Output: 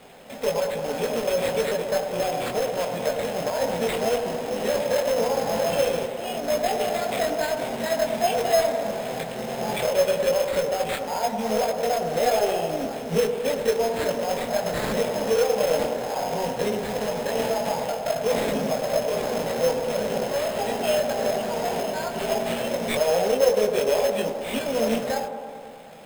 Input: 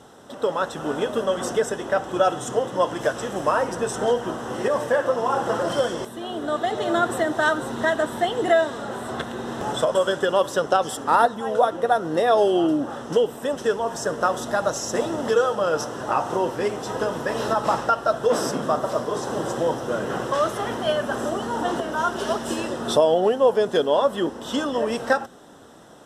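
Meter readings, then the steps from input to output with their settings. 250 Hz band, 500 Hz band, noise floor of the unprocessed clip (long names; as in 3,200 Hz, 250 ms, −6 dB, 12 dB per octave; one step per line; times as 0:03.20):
−3.5 dB, −0.5 dB, −38 dBFS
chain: high-pass filter 72 Hz 12 dB per octave
mains-hum notches 50/100/150/200 Hz
brickwall limiter −16.5 dBFS, peak gain reduction 10.5 dB
phaser with its sweep stopped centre 330 Hz, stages 6
log-companded quantiser 4 bits
multi-voice chorus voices 6, 0.14 Hz, delay 21 ms, depth 3.3 ms
sample-rate reduction 5,800 Hz, jitter 0%
delay with a band-pass on its return 105 ms, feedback 72%, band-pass 600 Hz, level −7 dB
level +5.5 dB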